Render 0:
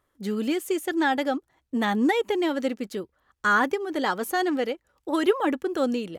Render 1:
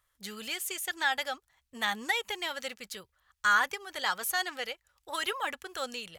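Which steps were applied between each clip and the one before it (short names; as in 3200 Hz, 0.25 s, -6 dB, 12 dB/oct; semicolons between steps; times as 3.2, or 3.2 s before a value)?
passive tone stack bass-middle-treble 10-0-10; gain +4 dB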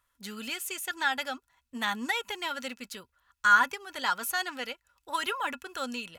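small resonant body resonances 250/990/1400/2600 Hz, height 12 dB, ringing for 65 ms; gain -1 dB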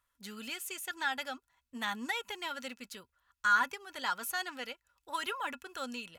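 soft clip -11.5 dBFS, distortion -22 dB; gain -5 dB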